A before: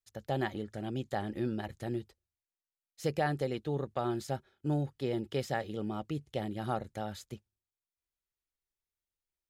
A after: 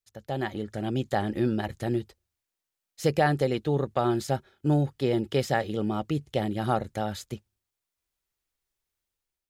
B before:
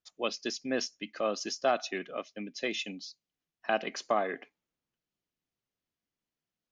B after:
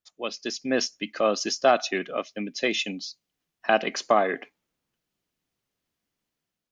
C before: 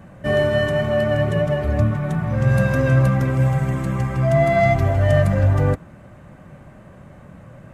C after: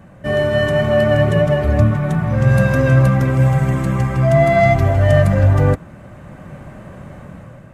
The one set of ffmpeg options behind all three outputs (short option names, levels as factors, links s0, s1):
-af "dynaudnorm=f=230:g=5:m=2.51"